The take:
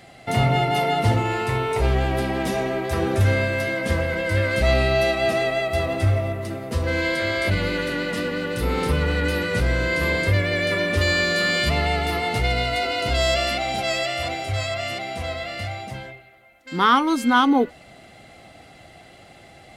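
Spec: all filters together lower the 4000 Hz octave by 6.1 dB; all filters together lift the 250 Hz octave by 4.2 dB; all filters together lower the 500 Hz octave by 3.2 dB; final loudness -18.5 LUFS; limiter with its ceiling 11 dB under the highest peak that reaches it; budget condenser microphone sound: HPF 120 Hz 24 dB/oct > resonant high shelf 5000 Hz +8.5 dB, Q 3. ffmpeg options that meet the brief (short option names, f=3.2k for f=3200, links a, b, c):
-af "equalizer=f=250:t=o:g=7,equalizer=f=500:t=o:g=-6,equalizer=f=4k:t=o:g=-4.5,alimiter=limit=-16dB:level=0:latency=1,highpass=f=120:w=0.5412,highpass=f=120:w=1.3066,highshelf=f=5k:t=q:w=3:g=8.5,volume=7dB"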